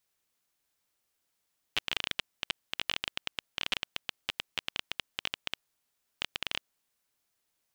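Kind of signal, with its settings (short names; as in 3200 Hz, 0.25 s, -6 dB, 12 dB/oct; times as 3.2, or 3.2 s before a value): random clicks 13/s -12.5 dBFS 5.20 s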